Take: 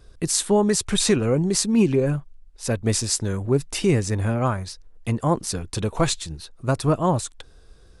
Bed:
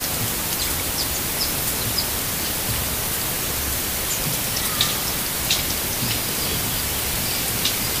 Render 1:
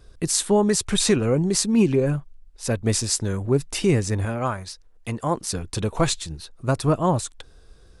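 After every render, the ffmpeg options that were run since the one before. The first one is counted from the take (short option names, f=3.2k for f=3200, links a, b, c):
-filter_complex "[0:a]asettb=1/sr,asplit=3[a][b][c];[a]atrim=end=4.254[d];[b]atrim=start=4.25:end=5.53,asetpts=PTS-STARTPTS,afade=t=in:d=0.004:c=qsin,afade=t=out:st=1.276:d=0.004:c=qsin,lowshelf=f=370:g=-6.5[e];[c]atrim=start=5.526[f];[d][e]acrossfade=d=0.004:c1=hsin:c2=qsin[g];[g][f]acrossfade=d=0.004:c1=qsin:c2=hsin"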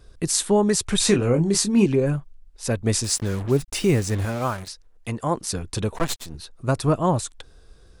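-filter_complex "[0:a]asettb=1/sr,asplit=3[a][b][c];[a]atrim=end=0.994[d];[b]atrim=start=0.99:end=1.86,asetpts=PTS-STARTPTS,afade=t=in:d=0.004:c=qsin,afade=t=out:st=0.866:d=0.004:c=qsin,asplit=2[e][f];[f]adelay=25,volume=-7.5dB[g];[e][g]amix=inputs=2:normalize=0,atrim=end_sample=38367[h];[c]atrim=start=1.856[i];[d][h]acrossfade=d=0.004:c1=hsin:c2=qsin[j];[j][i]acrossfade=d=0.004:c1=qsin:c2=hsin,asettb=1/sr,asplit=3[k][l][m];[k]atrim=end=3.044[n];[l]atrim=start=3.04:end=4.68,asetpts=PTS-STARTPTS,afade=t=in:d=0.004:c=qsin,afade=t=out:st=1.636:d=0.004:c=qsin,acrusher=bits=5:mix=0:aa=0.5[o];[m]atrim=start=4.676[p];[n][o]acrossfade=d=0.004:c1=hsin:c2=qsin[q];[q][p]acrossfade=d=0.004:c1=qsin:c2=hsin,asettb=1/sr,asplit=3[r][s][t];[r]atrim=end=5.944[u];[s]atrim=start=5.94:end=6.35,asetpts=PTS-STARTPTS,afade=t=in:d=0.004:c=qsin,afade=t=out:st=0.406:d=0.004:c=qsin,aeval=exprs='max(val(0),0)':c=same[v];[t]atrim=start=6.346[w];[u][v]acrossfade=d=0.004:c1=hsin:c2=qsin[x];[x][w]acrossfade=d=0.004:c1=qsin:c2=hsin"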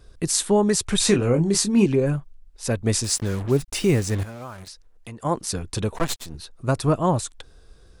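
-filter_complex "[0:a]asettb=1/sr,asplit=3[a][b][c];[a]atrim=end=4.234[d];[b]atrim=start=4.23:end=5.25,asetpts=PTS-STARTPTS,afade=t=in:d=0.004:c=qsin,afade=t=out:st=1.016:d=0.004:c=qsin,acompressor=threshold=-38dB:ratio=2.5:attack=3.2:release=140:knee=1:detection=peak[e];[c]atrim=start=5.246[f];[d][e]acrossfade=d=0.004:c1=hsin:c2=qsin[g];[g][f]acrossfade=d=0.004:c1=qsin:c2=hsin"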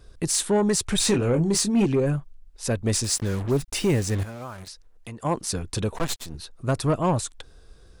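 -af "asoftclip=type=tanh:threshold=-14.5dB"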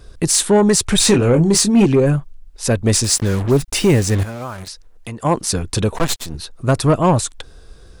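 -af "volume=8.5dB"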